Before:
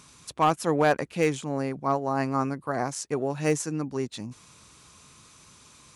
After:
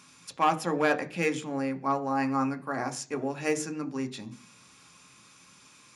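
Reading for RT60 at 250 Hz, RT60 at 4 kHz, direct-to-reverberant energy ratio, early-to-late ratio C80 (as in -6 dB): 0.55 s, 0.50 s, 6.0 dB, 21.5 dB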